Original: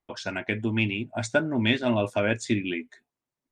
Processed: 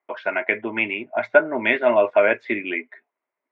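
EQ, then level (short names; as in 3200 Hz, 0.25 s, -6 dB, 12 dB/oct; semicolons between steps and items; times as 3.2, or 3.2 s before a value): speaker cabinet 390–2600 Hz, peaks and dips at 400 Hz +5 dB, 630 Hz +8 dB, 1000 Hz +6 dB, 1400 Hz +4 dB, 2100 Hz +9 dB; +3.5 dB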